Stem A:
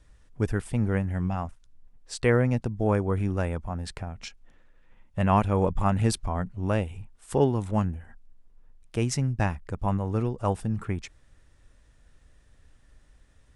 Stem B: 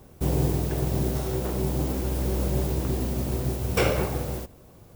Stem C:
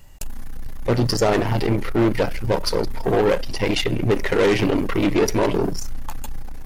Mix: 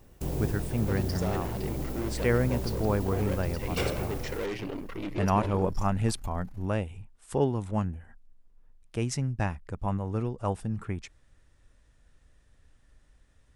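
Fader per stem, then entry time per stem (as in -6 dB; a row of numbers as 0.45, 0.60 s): -3.5, -8.0, -16.5 dB; 0.00, 0.00, 0.00 s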